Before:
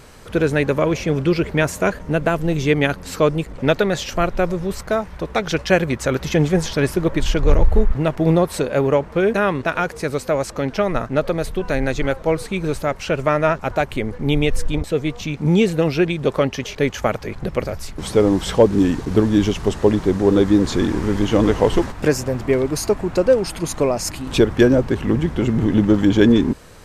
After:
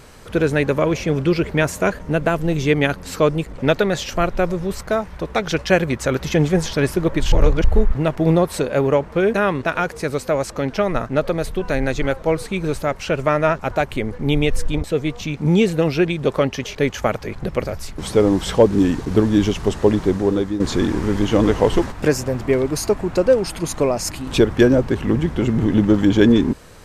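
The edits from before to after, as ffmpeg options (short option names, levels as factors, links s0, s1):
-filter_complex "[0:a]asplit=4[s0][s1][s2][s3];[s0]atrim=end=7.322[s4];[s1]atrim=start=7.318:end=7.642,asetpts=PTS-STARTPTS,areverse[s5];[s2]atrim=start=7.638:end=20.6,asetpts=PTS-STARTPTS,afade=t=out:st=12.442:d=0.52:silence=0.251189[s6];[s3]atrim=start=20.6,asetpts=PTS-STARTPTS,afade=t=in:d=0.004:c=hsin:silence=0.251189[s7];[s4][s5]acrossfade=d=0.004:c1=hsin:c2=hsin[s8];[s6][s7]concat=n=2:v=0:a=1[s9];[s8][s9]acrossfade=d=0.004:c1=hsin:c2=hsin"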